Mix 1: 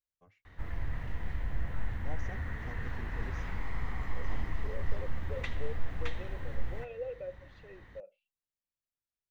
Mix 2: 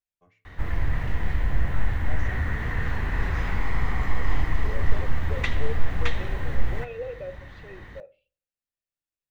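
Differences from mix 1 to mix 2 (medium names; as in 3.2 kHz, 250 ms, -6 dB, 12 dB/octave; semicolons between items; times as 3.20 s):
second voice +4.5 dB; background +10.5 dB; reverb: on, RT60 0.40 s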